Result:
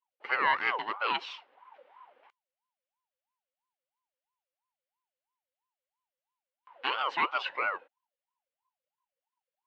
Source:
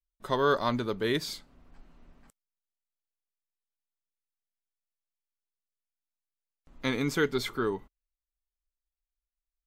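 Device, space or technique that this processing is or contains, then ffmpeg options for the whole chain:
voice changer toy: -af "aeval=exprs='val(0)*sin(2*PI*770*n/s+770*0.35/3*sin(2*PI*3*n/s))':c=same,highpass=510,equalizer=f=660:t=q:w=4:g=-7,equalizer=f=1k:t=q:w=4:g=4,equalizer=f=1.5k:t=q:w=4:g=4,equalizer=f=2.1k:t=q:w=4:g=4,equalizer=f=2.9k:t=q:w=4:g=7,lowpass=f=3.8k:w=0.5412,lowpass=f=3.8k:w=1.3066"

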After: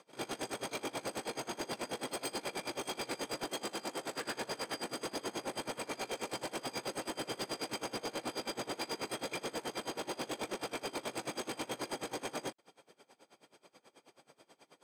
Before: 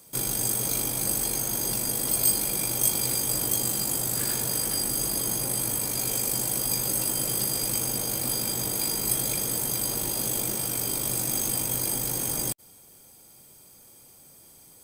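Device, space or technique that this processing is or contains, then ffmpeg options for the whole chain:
helicopter radio: -filter_complex "[0:a]highpass=350,lowpass=2.8k,aeval=exprs='val(0)*pow(10,-24*(0.5-0.5*cos(2*PI*9.3*n/s))/20)':c=same,asoftclip=type=hard:threshold=-39.5dB,asettb=1/sr,asplit=3[a][b][c];[a]atrim=end=3.484[d];[b]atrim=start=3.48:end=4.25,asetpts=PTS-STARTPTS,afade=t=in:d=0.004:c=qsin,afade=t=out:st=0.766:d=0.004:c=qsin,highpass=160[e];[c]atrim=start=4.246[f];[d][e]acrossfade=d=0.004:c1=hsin:c2=qsin[g];[g][f]acrossfade=d=0.004:c1=qsin:c2=hsin,volume=6.5dB"

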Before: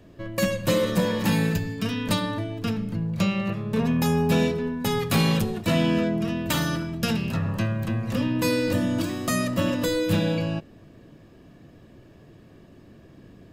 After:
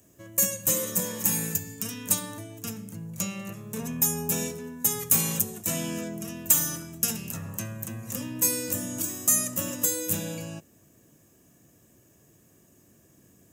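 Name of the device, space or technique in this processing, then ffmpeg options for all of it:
budget condenser microphone: -af "highpass=63,aemphasis=mode=production:type=75fm,highshelf=f=5.4k:t=q:w=3:g=7,volume=-10dB"

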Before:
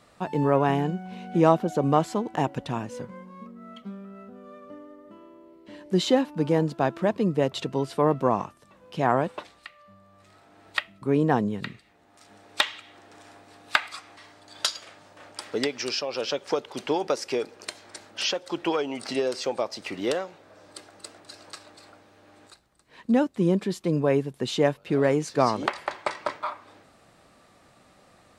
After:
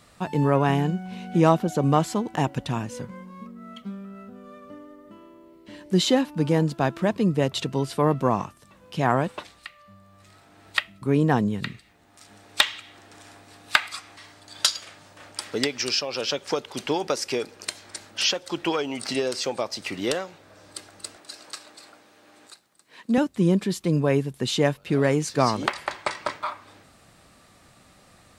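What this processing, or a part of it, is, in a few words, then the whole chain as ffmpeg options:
smiley-face EQ: -filter_complex "[0:a]asettb=1/sr,asplit=3[a][b][c];[a]atrim=end=21.164[d];[b]atrim=start=21.16:end=23.18,asetpts=PTS-STARTPTS,afade=t=in:d=0.004:c=qsin,afade=t=out:st=2.016:d=0.004:c=qsin,highpass=240[e];[c]atrim=start=23.176[f];[d][e]acrossfade=d=0.004:c1=hsin:c2=qsin[g];[g][f]acrossfade=d=0.004:c1=qsin:c2=hsin,lowshelf=f=150:g=3.5,equalizer=f=540:t=o:w=2.5:g=-5,highshelf=f=7.9k:g=5.5,volume=4dB"

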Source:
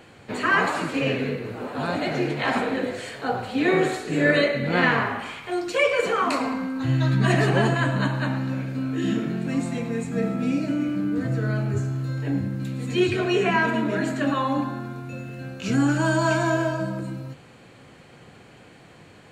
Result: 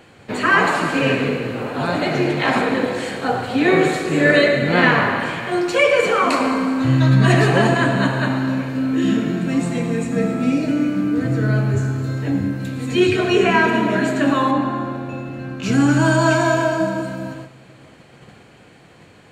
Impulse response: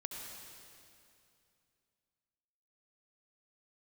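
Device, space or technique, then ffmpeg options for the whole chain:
keyed gated reverb: -filter_complex "[0:a]asplit=3[a][b][c];[1:a]atrim=start_sample=2205[d];[b][d]afir=irnorm=-1:irlink=0[e];[c]apad=whole_len=851683[f];[e][f]sidechaingate=range=-13dB:threshold=-46dB:ratio=16:detection=peak,volume=2.5dB[g];[a][g]amix=inputs=2:normalize=0,asettb=1/sr,asplit=3[h][i][j];[h]atrim=end=14.514[k];[i]atrim=start=14.51:end=15.63,asetpts=PTS-STARTPTS,afade=t=in:d=0.004:c=qsin,afade=t=out:st=1.116:d=0.004:c=qsin,lowpass=f=3.1k:p=1[l];[j]atrim=start=15.626[m];[k][l]acrossfade=d=0.004:c1=hsin:c2=qsin[n];[n][m]acrossfade=d=0.004:c1=qsin:c2=hsin"

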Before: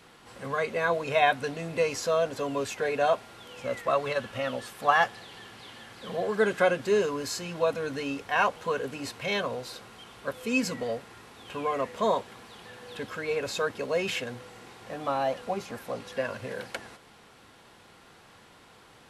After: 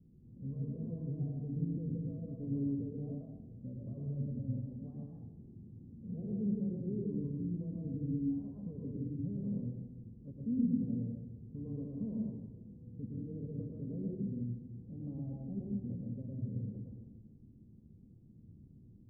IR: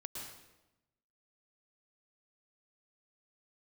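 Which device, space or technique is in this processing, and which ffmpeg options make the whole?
club heard from the street: -filter_complex "[0:a]alimiter=limit=-20.5dB:level=0:latency=1:release=70,lowpass=f=230:w=0.5412,lowpass=f=230:w=1.3066[a];[1:a]atrim=start_sample=2205[b];[a][b]afir=irnorm=-1:irlink=0,volume=7dB"

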